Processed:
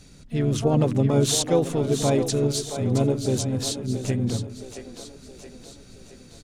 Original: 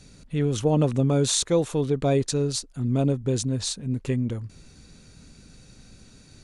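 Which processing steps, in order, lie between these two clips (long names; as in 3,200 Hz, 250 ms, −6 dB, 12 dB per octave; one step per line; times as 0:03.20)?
echo with a time of its own for lows and highs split 310 Hz, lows 96 ms, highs 671 ms, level −9 dB
pitch-shifted copies added −3 semitones −10 dB, +7 semitones −13 dB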